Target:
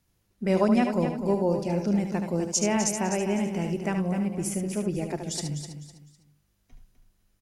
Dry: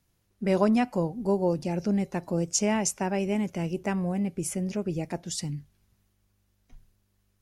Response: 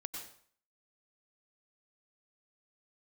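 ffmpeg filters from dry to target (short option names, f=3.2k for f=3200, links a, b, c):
-filter_complex "[0:a]aecho=1:1:253|506|759:0.355|0.106|0.0319,asplit=2[a][b];[1:a]atrim=start_sample=2205,atrim=end_sample=3969,adelay=74[c];[b][c]afir=irnorm=-1:irlink=0,volume=-3.5dB[d];[a][d]amix=inputs=2:normalize=0"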